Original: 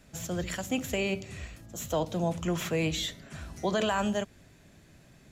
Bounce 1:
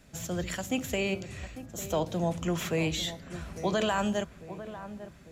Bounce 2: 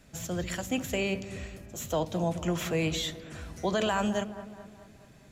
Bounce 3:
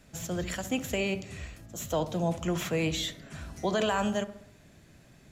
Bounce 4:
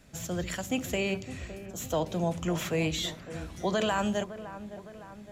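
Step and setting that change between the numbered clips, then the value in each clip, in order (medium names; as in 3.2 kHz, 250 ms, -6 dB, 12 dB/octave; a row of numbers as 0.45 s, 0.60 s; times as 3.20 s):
feedback echo behind a low-pass, time: 849 ms, 213 ms, 65 ms, 561 ms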